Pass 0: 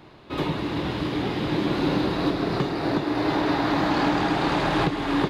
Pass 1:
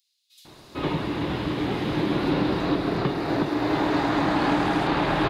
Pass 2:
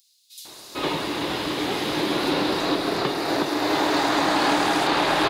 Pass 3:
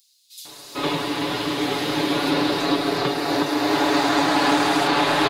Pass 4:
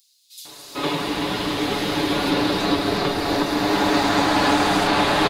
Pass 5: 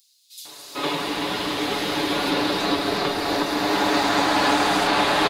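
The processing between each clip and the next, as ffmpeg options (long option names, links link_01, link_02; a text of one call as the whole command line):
ffmpeg -i in.wav -filter_complex "[0:a]acrossover=split=5100[link_01][link_02];[link_01]adelay=450[link_03];[link_03][link_02]amix=inputs=2:normalize=0" out.wav
ffmpeg -i in.wav -af "bass=frequency=250:gain=-13,treble=frequency=4000:gain=12,volume=3.5dB" out.wav
ffmpeg -i in.wav -af "aecho=1:1:7:0.65" out.wav
ffmpeg -i in.wav -filter_complex "[0:a]asplit=7[link_01][link_02][link_03][link_04][link_05][link_06][link_07];[link_02]adelay=224,afreqshift=-100,volume=-10dB[link_08];[link_03]adelay=448,afreqshift=-200,volume=-15.2dB[link_09];[link_04]adelay=672,afreqshift=-300,volume=-20.4dB[link_10];[link_05]adelay=896,afreqshift=-400,volume=-25.6dB[link_11];[link_06]adelay=1120,afreqshift=-500,volume=-30.8dB[link_12];[link_07]adelay=1344,afreqshift=-600,volume=-36dB[link_13];[link_01][link_08][link_09][link_10][link_11][link_12][link_13]amix=inputs=7:normalize=0" out.wav
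ffmpeg -i in.wav -af "lowshelf=frequency=220:gain=-9" out.wav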